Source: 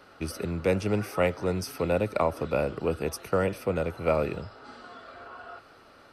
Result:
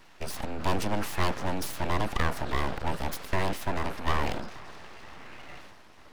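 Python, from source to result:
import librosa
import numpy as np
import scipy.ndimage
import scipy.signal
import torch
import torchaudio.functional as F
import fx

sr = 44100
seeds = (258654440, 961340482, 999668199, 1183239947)

y = fx.transient(x, sr, attack_db=0, sustain_db=7)
y = fx.echo_filtered(y, sr, ms=477, feedback_pct=72, hz=1500.0, wet_db=-22.0)
y = np.abs(y)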